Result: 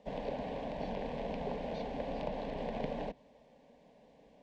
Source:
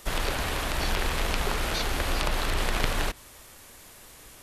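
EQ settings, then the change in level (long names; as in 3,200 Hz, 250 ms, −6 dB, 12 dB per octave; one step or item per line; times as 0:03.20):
resonant band-pass 350 Hz, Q 0.81
high-frequency loss of the air 120 metres
phaser with its sweep stopped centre 350 Hz, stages 6
+1.0 dB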